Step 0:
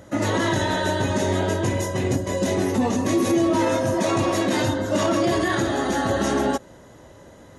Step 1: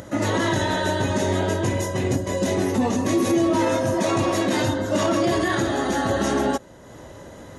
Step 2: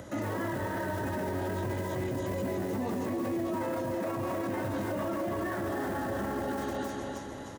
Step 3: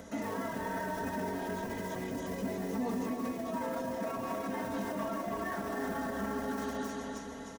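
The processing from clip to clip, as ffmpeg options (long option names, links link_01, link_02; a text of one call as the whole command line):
ffmpeg -i in.wav -af "acompressor=mode=upward:threshold=-33dB:ratio=2.5" out.wav
ffmpeg -i in.wav -filter_complex "[0:a]aecho=1:1:308|616|924|1232|1540|1848|2156:0.501|0.271|0.146|0.0789|0.0426|0.023|0.0124,acrossover=split=110|1500|2300[link_01][link_02][link_03][link_04];[link_04]aeval=exprs='(mod(66.8*val(0)+1,2)-1)/66.8':channel_layout=same[link_05];[link_01][link_02][link_03][link_05]amix=inputs=4:normalize=0,alimiter=limit=-20dB:level=0:latency=1:release=18,volume=-5.5dB" out.wav
ffmpeg -i in.wav -af "equalizer=frequency=5700:width_type=o:width=0.32:gain=4.5,aecho=1:1:4.4:0.82,bandreject=frequency=46.71:width_type=h:width=4,bandreject=frequency=93.42:width_type=h:width=4,volume=-4.5dB" out.wav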